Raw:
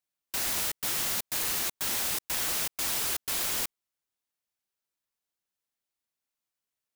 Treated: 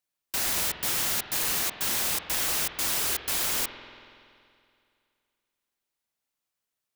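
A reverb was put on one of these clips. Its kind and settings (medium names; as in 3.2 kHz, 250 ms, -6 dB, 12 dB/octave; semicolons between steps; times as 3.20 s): spring tank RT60 2.4 s, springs 47 ms, chirp 75 ms, DRR 7.5 dB; trim +2.5 dB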